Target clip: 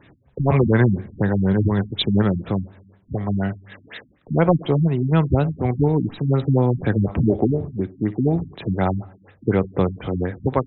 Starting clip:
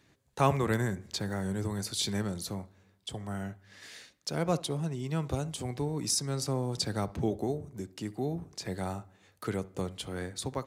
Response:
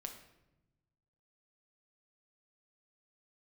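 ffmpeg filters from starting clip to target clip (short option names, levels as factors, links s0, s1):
-af "aeval=exprs='0.299*(cos(1*acos(clip(val(0)/0.299,-1,1)))-cos(1*PI/2))+0.0335*(cos(2*acos(clip(val(0)/0.299,-1,1)))-cos(2*PI/2))':c=same,alimiter=level_in=9.44:limit=0.891:release=50:level=0:latency=1,afftfilt=real='re*lt(b*sr/1024,270*pow(4100/270,0.5+0.5*sin(2*PI*4.1*pts/sr)))':imag='im*lt(b*sr/1024,270*pow(4100/270,0.5+0.5*sin(2*PI*4.1*pts/sr)))':win_size=1024:overlap=0.75,volume=0.596"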